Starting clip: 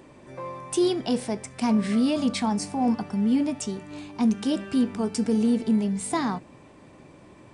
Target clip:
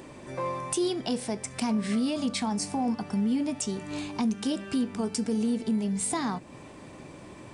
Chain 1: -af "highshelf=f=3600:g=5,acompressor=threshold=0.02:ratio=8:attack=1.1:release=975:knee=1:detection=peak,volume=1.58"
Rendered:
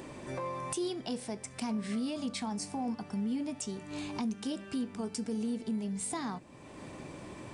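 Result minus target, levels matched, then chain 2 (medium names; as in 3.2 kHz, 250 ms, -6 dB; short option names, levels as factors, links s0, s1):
compression: peak gain reduction +7 dB
-af "highshelf=f=3600:g=5,acompressor=threshold=0.0501:ratio=8:attack=1.1:release=975:knee=1:detection=peak,volume=1.58"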